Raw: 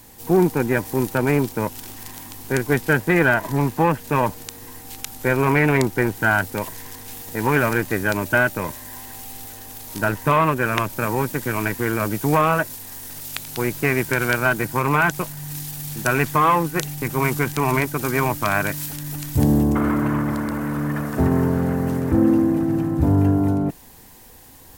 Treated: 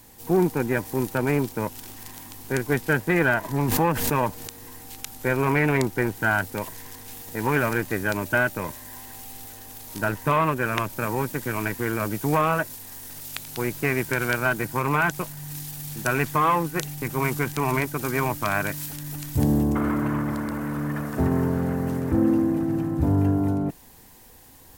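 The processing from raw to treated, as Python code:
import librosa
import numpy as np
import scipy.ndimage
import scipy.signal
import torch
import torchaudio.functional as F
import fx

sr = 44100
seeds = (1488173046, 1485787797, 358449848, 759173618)

y = fx.pre_swell(x, sr, db_per_s=31.0, at=(3.68, 4.9))
y = y * librosa.db_to_amplitude(-4.0)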